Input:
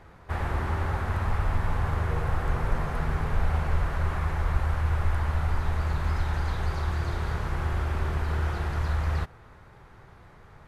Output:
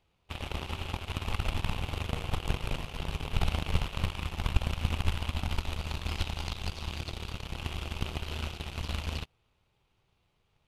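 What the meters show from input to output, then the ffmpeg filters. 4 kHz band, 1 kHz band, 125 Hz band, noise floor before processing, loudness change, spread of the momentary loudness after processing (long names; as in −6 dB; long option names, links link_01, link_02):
+8.0 dB, −8.0 dB, −7.5 dB, −52 dBFS, −6.0 dB, 6 LU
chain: -af "aeval=exprs='0.282*(cos(1*acos(clip(val(0)/0.282,-1,1)))-cos(1*PI/2))+0.141*(cos(2*acos(clip(val(0)/0.282,-1,1)))-cos(2*PI/2))+0.0355*(cos(7*acos(clip(val(0)/0.282,-1,1)))-cos(7*PI/2))+0.0158*(cos(8*acos(clip(val(0)/0.282,-1,1)))-cos(8*PI/2))':channel_layout=same,highshelf=frequency=2200:width_type=q:width=3:gain=8,volume=-4dB"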